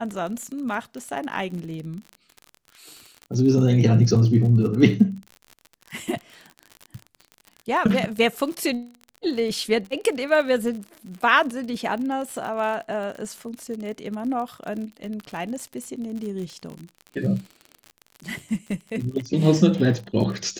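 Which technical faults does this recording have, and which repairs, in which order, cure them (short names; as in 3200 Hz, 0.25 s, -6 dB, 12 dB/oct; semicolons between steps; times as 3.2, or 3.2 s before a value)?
crackle 51/s -31 dBFS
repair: de-click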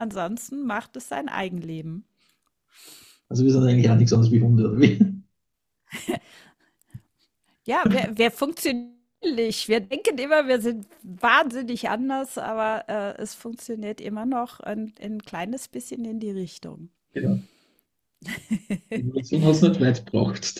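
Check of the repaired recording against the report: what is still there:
none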